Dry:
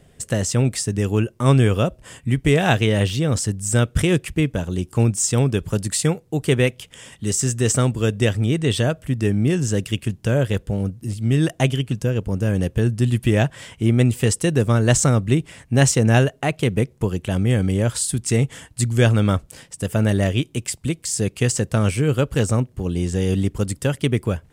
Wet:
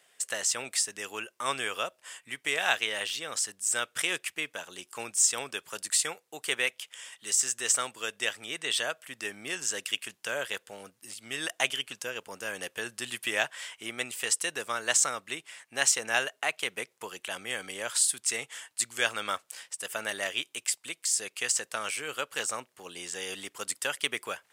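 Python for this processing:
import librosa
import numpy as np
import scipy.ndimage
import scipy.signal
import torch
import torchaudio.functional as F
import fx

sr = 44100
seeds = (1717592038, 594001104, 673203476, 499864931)

p1 = scipy.signal.sosfilt(scipy.signal.butter(2, 1100.0, 'highpass', fs=sr, output='sos'), x)
p2 = fx.rider(p1, sr, range_db=10, speed_s=2.0)
p3 = p1 + F.gain(torch.from_numpy(p2), -2.5).numpy()
y = F.gain(torch.from_numpy(p3), -7.5).numpy()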